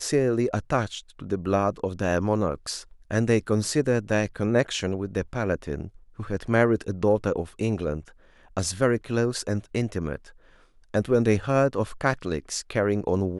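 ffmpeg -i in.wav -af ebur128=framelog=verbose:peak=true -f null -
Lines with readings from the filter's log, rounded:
Integrated loudness:
  I:         -25.9 LUFS
  Threshold: -36.2 LUFS
Loudness range:
  LRA:         2.5 LU
  Threshold: -46.4 LUFS
  LRA low:   -27.9 LUFS
  LRA high:  -25.4 LUFS
True peak:
  Peak:       -7.1 dBFS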